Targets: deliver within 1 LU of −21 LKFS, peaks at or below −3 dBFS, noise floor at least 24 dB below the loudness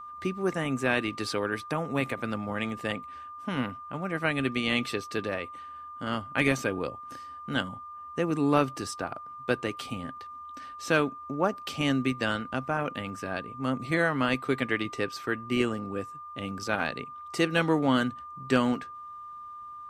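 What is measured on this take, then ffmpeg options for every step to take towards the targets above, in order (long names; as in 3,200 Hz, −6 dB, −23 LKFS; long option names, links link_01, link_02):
interfering tone 1,200 Hz; level of the tone −40 dBFS; integrated loudness −30.0 LKFS; sample peak −9.5 dBFS; target loudness −21.0 LKFS
→ -af "bandreject=frequency=1200:width=30"
-af "volume=9dB,alimiter=limit=-3dB:level=0:latency=1"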